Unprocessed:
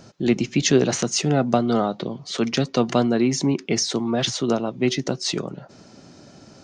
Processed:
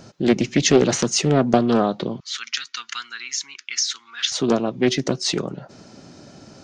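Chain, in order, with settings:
0:02.20–0:04.32: elliptic band-pass filter 1,400–7,200 Hz, stop band 40 dB
highs frequency-modulated by the lows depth 0.35 ms
level +2.5 dB

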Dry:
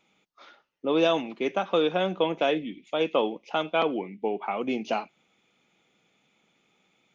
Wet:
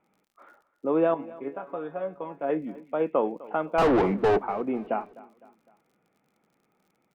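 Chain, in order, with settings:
low-pass filter 1,700 Hz 24 dB per octave
0:03.78–0:04.39: mid-hump overdrive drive 34 dB, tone 1,200 Hz, clips at −13 dBFS
surface crackle 58 per second −54 dBFS
0:01.14–0:02.50: tuned comb filter 140 Hz, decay 0.17 s, harmonics all, mix 90%
repeating echo 254 ms, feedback 45%, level −20 dB

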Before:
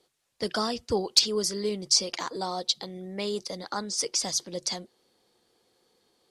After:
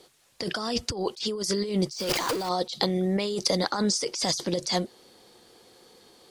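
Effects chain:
0:01.92–0:02.49: converter with a step at zero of −30.5 dBFS
compressor whose output falls as the input rises −36 dBFS, ratio −1
level +7.5 dB

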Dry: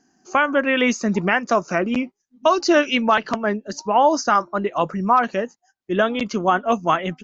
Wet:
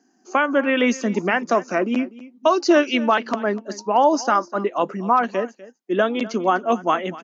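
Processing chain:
high-pass filter 230 Hz 24 dB per octave
low-shelf EQ 470 Hz +6.5 dB
single-tap delay 247 ms −18.5 dB
level −2.5 dB

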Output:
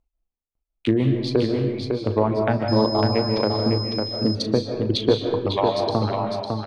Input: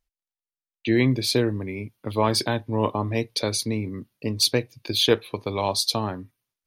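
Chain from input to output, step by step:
adaptive Wiener filter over 25 samples
reverb reduction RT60 1.2 s
treble cut that deepens with the level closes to 920 Hz, closed at −20 dBFS
reverb reduction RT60 1.9 s
downward compressor 3 to 1, threshold −25 dBFS, peak gain reduction 9 dB
double-tracking delay 37 ms −14 dB
single-tap delay 553 ms −4.5 dB
comb and all-pass reverb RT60 0.99 s, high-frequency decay 0.8×, pre-delay 110 ms, DRR 3.5 dB
0:02.68–0:04.35: switching amplifier with a slow clock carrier 5,100 Hz
level +8 dB

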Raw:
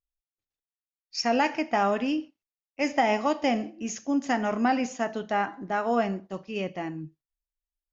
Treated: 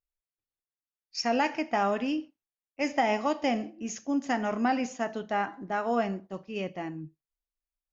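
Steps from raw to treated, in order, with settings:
one half of a high-frequency compander decoder only
level −2.5 dB

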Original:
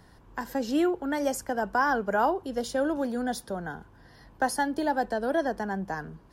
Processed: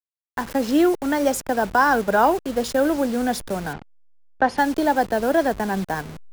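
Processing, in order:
hold until the input has moved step −38 dBFS
0:03.73–0:04.58: low-pass filter 3,200 Hz 12 dB per octave
level +7.5 dB

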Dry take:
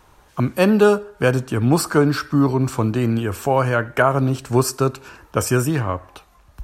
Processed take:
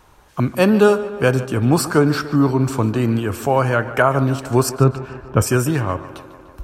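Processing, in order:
0:04.69–0:05.42: bass and treble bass +8 dB, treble −14 dB
tape delay 147 ms, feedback 74%, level −14.5 dB, low-pass 4,100 Hz
level +1 dB

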